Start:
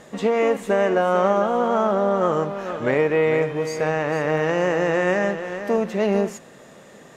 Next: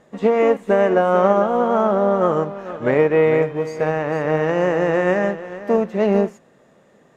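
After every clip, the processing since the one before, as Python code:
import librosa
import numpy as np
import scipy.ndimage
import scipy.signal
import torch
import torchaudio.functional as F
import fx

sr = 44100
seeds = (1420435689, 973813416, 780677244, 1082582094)

y = fx.high_shelf(x, sr, hz=2400.0, db=-9.0)
y = fx.upward_expand(y, sr, threshold_db=-41.0, expansion=1.5)
y = y * librosa.db_to_amplitude(5.0)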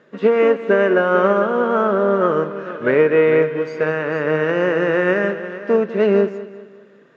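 y = fx.cabinet(x, sr, low_hz=150.0, low_slope=12, high_hz=5400.0, hz=(410.0, 770.0, 1500.0, 2700.0), db=(5, -10, 9, 4))
y = fx.echo_feedback(y, sr, ms=197, feedback_pct=43, wet_db=-15.5)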